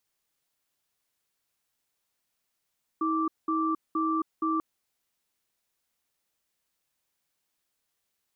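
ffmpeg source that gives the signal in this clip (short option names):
-f lavfi -i "aevalsrc='0.0447*(sin(2*PI*320*t)+sin(2*PI*1170*t))*clip(min(mod(t,0.47),0.27-mod(t,0.47))/0.005,0,1)':d=1.59:s=44100"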